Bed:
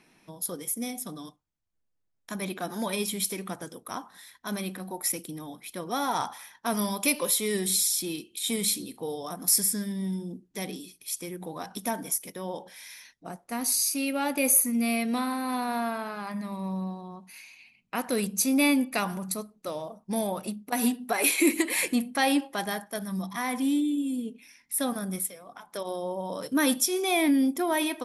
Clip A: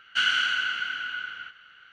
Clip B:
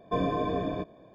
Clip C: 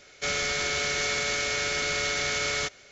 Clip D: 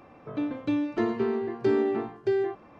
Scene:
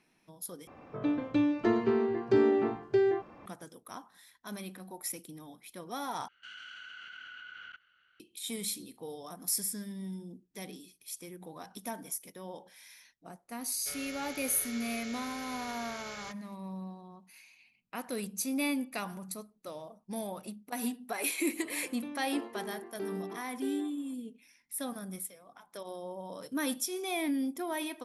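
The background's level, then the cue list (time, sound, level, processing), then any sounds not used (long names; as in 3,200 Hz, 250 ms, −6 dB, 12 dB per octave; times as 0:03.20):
bed −9 dB
0:00.67: overwrite with D −0.5 dB
0:06.28: overwrite with A −6 dB + output level in coarse steps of 21 dB
0:13.64: mix in C −17 dB
0:21.35: mix in D −12.5 dB + high-pass filter 330 Hz
not used: B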